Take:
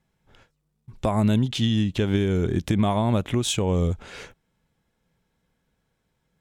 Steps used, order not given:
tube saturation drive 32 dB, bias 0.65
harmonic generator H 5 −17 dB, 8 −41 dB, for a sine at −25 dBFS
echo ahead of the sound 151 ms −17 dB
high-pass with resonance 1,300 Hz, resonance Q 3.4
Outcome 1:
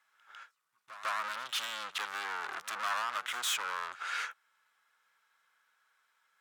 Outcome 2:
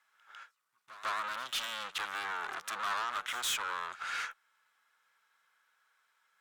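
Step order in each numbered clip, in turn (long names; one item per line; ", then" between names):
tube saturation, then echo ahead of the sound, then harmonic generator, then high-pass with resonance
tube saturation, then high-pass with resonance, then harmonic generator, then echo ahead of the sound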